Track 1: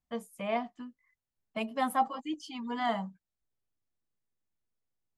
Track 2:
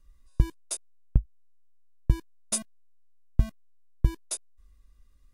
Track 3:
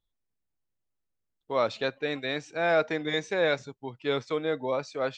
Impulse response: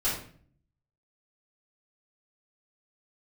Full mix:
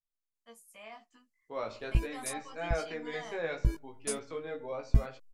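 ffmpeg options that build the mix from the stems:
-filter_complex "[0:a]highpass=f=490:p=1,equalizer=f=8.4k:t=o:w=2.8:g=14.5,alimiter=level_in=0.5dB:limit=-24dB:level=0:latency=1:release=22,volume=-0.5dB,adelay=350,volume=-15.5dB[a];[1:a]adelay=1550,volume=-3.5dB[b];[2:a]volume=-15.5dB,asplit=3[c][d][e];[d]volume=-17.5dB[f];[e]apad=whole_len=303705[g];[b][g]sidechaincompress=threshold=-47dB:ratio=8:attack=12:release=338[h];[3:a]atrim=start_sample=2205[i];[f][i]afir=irnorm=-1:irlink=0[j];[a][h][c][j]amix=inputs=4:normalize=0,equalizer=f=3.6k:t=o:w=0.22:g=-7.5,dynaudnorm=f=230:g=7:m=7.5dB,flanger=delay=16.5:depth=2.2:speed=0.39"

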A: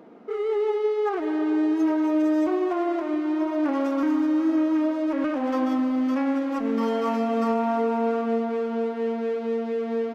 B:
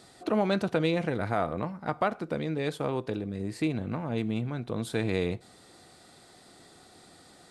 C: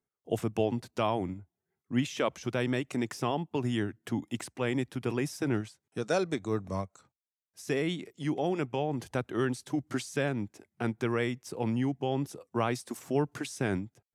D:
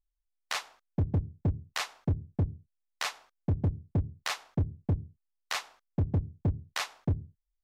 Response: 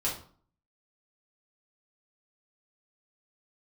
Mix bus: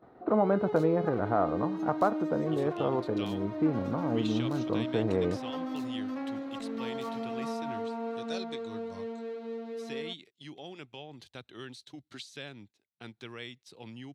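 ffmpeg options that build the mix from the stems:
-filter_complex "[0:a]volume=-12dB[a];[1:a]lowpass=f=1.3k:w=0.5412,lowpass=f=1.3k:w=1.3066,lowshelf=f=230:g=-5.5,volume=2.5dB[b];[2:a]equalizer=f=3.5k:w=0.92:g=14,adelay=2200,volume=-16dB[c];[3:a]aderivative,aeval=exprs='val(0)*gte(abs(val(0)),0.00794)':c=same,adelay=250,volume=-19dB[d];[a][b][c][d]amix=inputs=4:normalize=0,agate=range=-11dB:threshold=-56dB:ratio=16:detection=peak,equalizer=f=4k:w=5:g=8"

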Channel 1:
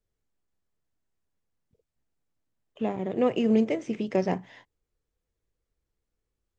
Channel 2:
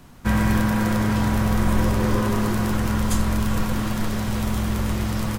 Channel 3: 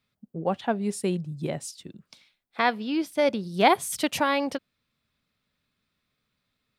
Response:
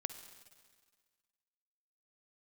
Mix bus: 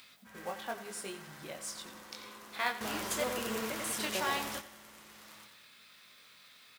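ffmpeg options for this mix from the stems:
-filter_complex "[0:a]volume=-5dB,asplit=3[a][b][c];[b]volume=-3.5dB[d];[1:a]volume=-6dB,asplit=2[e][f];[f]volume=-15dB[g];[2:a]acompressor=mode=upward:threshold=-27dB:ratio=2.5,flanger=delay=19.5:depth=3.4:speed=0.83,volume=-2.5dB,asplit=3[h][i][j];[h]atrim=end=3.24,asetpts=PTS-STARTPTS,afade=t=out:st=3.236:d=0.004:c=hsin[k];[i]atrim=start=3.24:end=3.84,asetpts=PTS-STARTPTS,volume=0[l];[j]atrim=start=3.84,asetpts=PTS-STARTPTS,afade=t=in:d=0.004:c=hsin[m];[k][l][m]concat=n=3:v=0:a=1,asplit=2[n][o];[o]volume=-13dB[p];[c]apad=whole_len=237365[q];[e][q]sidechaingate=range=-20dB:threshold=-54dB:ratio=16:detection=peak[r];[d][g][p]amix=inputs=3:normalize=0,aecho=0:1:90|180|270|360|450|540:1|0.43|0.185|0.0795|0.0342|0.0147[s];[a][r][n][s]amix=inputs=4:normalize=0,highpass=f=1.4k:p=1,acrusher=bits=4:mode=log:mix=0:aa=0.000001"

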